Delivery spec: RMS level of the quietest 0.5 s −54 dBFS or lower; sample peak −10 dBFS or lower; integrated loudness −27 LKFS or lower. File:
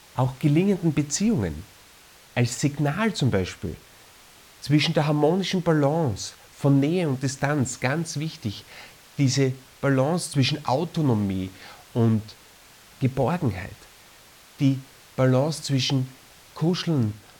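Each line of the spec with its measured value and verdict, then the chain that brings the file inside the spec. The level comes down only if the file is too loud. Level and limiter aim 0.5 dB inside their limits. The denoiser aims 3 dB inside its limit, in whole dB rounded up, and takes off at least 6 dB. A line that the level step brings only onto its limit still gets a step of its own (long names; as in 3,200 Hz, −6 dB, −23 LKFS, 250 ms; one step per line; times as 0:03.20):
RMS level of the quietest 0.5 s −51 dBFS: out of spec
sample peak −8.0 dBFS: out of spec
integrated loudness −24.0 LKFS: out of spec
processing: level −3.5 dB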